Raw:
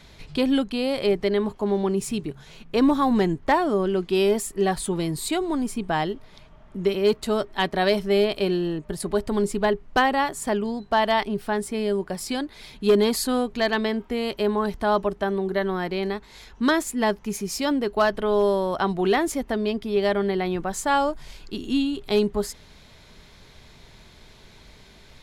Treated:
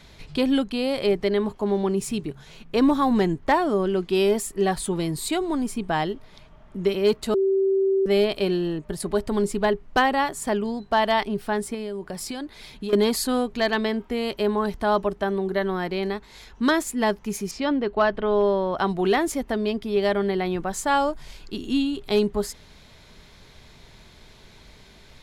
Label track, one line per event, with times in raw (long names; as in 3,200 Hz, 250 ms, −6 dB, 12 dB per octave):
7.340000	8.060000	beep over 387 Hz −17.5 dBFS
11.740000	12.930000	downward compressor, threshold −27 dBFS
17.510000	18.770000	low-pass filter 3,400 Hz